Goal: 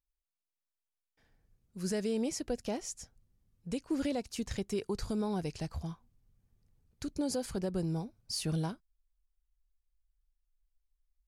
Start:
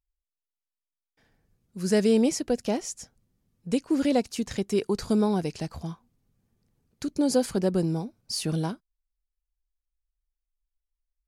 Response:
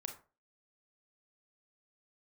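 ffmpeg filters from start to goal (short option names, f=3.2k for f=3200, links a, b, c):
-af "alimiter=limit=-17.5dB:level=0:latency=1:release=191,asubboost=boost=3.5:cutoff=110,volume=-5.5dB"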